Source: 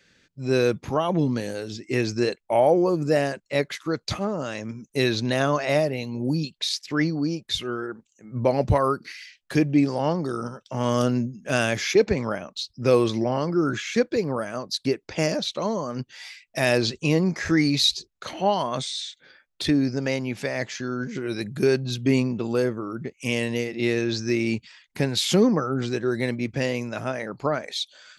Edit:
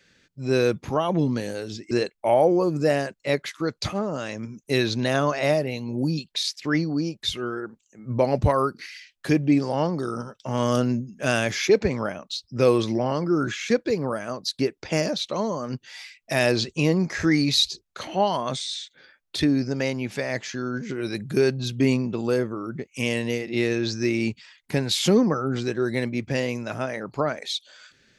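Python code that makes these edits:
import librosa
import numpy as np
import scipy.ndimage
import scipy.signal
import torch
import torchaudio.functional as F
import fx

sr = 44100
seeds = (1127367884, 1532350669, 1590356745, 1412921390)

y = fx.edit(x, sr, fx.cut(start_s=1.91, length_s=0.26), tone=tone)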